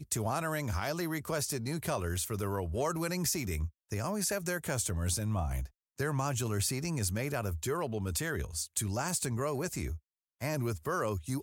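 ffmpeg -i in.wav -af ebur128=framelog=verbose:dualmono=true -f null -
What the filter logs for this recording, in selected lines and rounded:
Integrated loudness:
  I:         -30.8 LUFS
  Threshold: -40.8 LUFS
Loudness range:
  LRA:         1.3 LU
  Threshold: -50.7 LUFS
  LRA low:   -31.6 LUFS
  LRA high:  -30.2 LUFS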